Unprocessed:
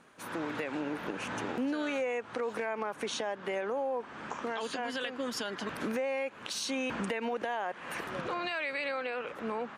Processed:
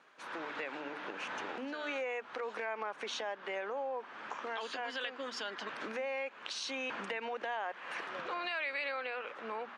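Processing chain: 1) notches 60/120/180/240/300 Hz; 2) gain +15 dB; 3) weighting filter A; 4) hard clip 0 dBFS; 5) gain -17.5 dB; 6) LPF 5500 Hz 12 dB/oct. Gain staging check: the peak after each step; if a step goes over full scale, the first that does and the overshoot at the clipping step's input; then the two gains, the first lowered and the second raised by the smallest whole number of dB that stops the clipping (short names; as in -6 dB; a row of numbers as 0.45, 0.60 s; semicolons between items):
-21.0, -6.0, -5.0, -5.0, -22.5, -22.5 dBFS; no overload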